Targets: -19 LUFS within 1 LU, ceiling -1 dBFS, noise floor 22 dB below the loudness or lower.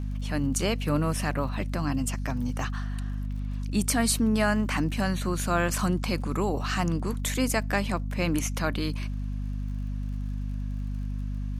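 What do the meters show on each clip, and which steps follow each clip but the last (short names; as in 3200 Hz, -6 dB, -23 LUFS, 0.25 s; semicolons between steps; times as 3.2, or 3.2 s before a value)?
ticks 44/s; hum 50 Hz; harmonics up to 250 Hz; hum level -28 dBFS; loudness -28.5 LUFS; peak -11.5 dBFS; loudness target -19.0 LUFS
-> de-click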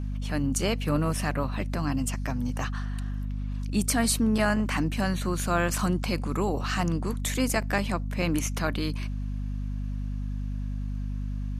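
ticks 0.26/s; hum 50 Hz; harmonics up to 250 Hz; hum level -28 dBFS
-> notches 50/100/150/200/250 Hz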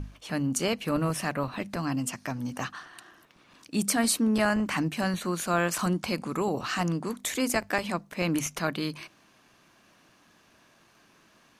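hum none; loudness -29.0 LUFS; peak -12.0 dBFS; loudness target -19.0 LUFS
-> gain +10 dB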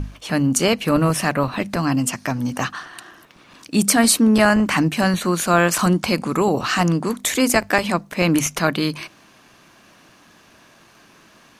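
loudness -19.0 LUFS; peak -2.0 dBFS; noise floor -51 dBFS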